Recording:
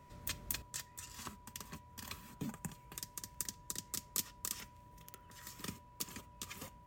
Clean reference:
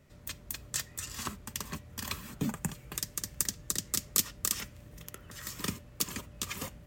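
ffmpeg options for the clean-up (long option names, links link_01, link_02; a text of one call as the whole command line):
ffmpeg -i in.wav -af "adeclick=threshold=4,bandreject=frequency=980:width=30,asetnsamples=nb_out_samples=441:pad=0,asendcmd='0.62 volume volume 10dB',volume=0dB" out.wav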